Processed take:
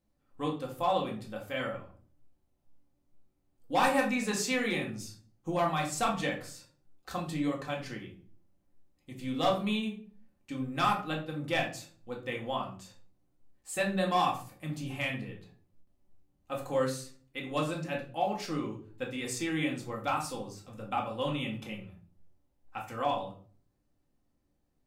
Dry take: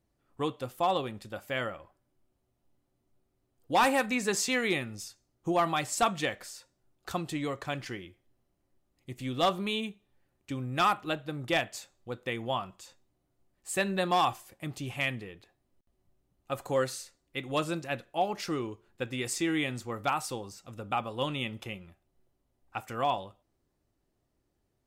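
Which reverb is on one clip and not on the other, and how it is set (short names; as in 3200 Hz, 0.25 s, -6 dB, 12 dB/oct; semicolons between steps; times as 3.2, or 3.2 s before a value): shoebox room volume 350 m³, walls furnished, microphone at 2.1 m; gain -5.5 dB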